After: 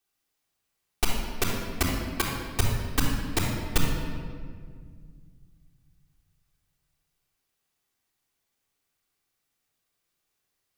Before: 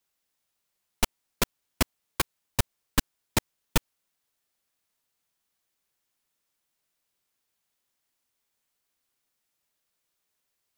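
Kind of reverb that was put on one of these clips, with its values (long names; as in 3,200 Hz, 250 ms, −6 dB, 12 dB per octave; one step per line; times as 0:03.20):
rectangular room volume 3,000 cubic metres, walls mixed, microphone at 3.6 metres
level −3.5 dB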